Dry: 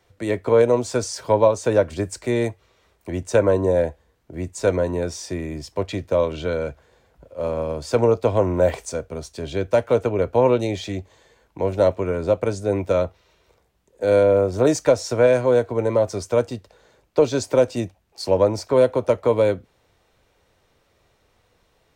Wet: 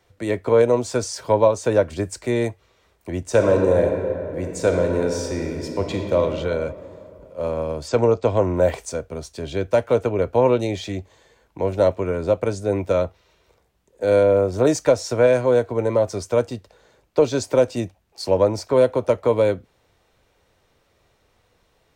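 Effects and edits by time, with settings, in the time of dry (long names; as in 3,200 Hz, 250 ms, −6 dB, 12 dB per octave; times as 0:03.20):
0:03.21–0:06.17: thrown reverb, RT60 2.8 s, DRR 2.5 dB
0:07.88–0:08.56: linear-phase brick-wall low-pass 8,500 Hz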